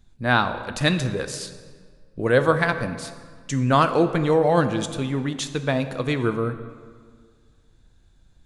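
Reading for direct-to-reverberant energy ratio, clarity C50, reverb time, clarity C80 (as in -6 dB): 9.0 dB, 11.0 dB, 1.8 s, 12.0 dB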